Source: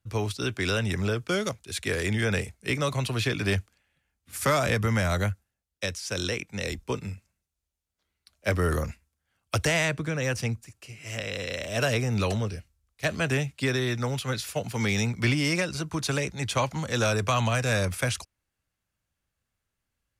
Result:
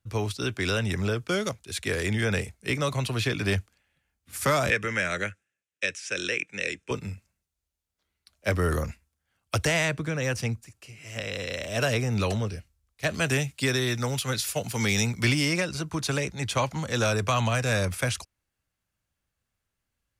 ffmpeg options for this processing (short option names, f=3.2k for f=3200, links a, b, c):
-filter_complex "[0:a]asettb=1/sr,asplit=3[a][b][c];[a]atrim=end=4.704[d];[b]atrim=start=4.7:end=6.91,asetpts=PTS-STARTPTS,afade=t=in:d=0.004:c=qsin,afade=t=out:st=2.206:d=0.004:c=qsin,highpass=220,equalizer=f=230:t=q:w=4:g=-6,equalizer=f=740:t=q:w=4:g=-9,equalizer=f=1k:t=q:w=4:g=-8,equalizer=f=1.7k:t=q:w=4:g=6,equalizer=f=2.5k:t=q:w=4:g=8,equalizer=f=4.5k:t=q:w=4:g=-9,lowpass=f=9k:w=0.5412,lowpass=f=9k:w=1.3066[e];[c]atrim=start=6.906[f];[d][e]acrossfade=d=0.004:c1=hsin:c2=qsin[g];[g][f]acrossfade=d=0.004:c1=qsin:c2=hsin,asplit=3[h][i][j];[h]afade=t=out:st=10.6:d=0.02[k];[i]acompressor=threshold=-45dB:ratio=1.5:attack=3.2:release=140:knee=1:detection=peak,afade=t=in:st=10.6:d=0.02,afade=t=out:st=11.15:d=0.02[l];[j]afade=t=in:st=11.15:d=0.02[m];[k][l][m]amix=inputs=3:normalize=0,asettb=1/sr,asplit=3[n][o][p];[n]atrim=end=13.144[q];[o]atrim=start=13.14:end=15.45,asetpts=PTS-STARTPTS,afade=t=in:d=0.004:c=qsin,afade=t=out:st=2.306:d=0.004:c=qsin,highshelf=f=4.2k:g=8.5[r];[p]atrim=start=15.446[s];[q][r]acrossfade=d=0.004:c1=hsin:c2=qsin[t];[t][s]acrossfade=d=0.004:c1=qsin:c2=hsin"